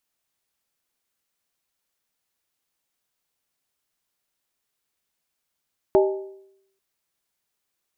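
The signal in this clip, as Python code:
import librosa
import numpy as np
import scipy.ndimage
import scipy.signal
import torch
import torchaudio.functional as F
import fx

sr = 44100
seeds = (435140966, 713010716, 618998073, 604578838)

y = fx.strike_skin(sr, length_s=0.84, level_db=-12, hz=388.0, decay_s=0.77, tilt_db=5.5, modes=4)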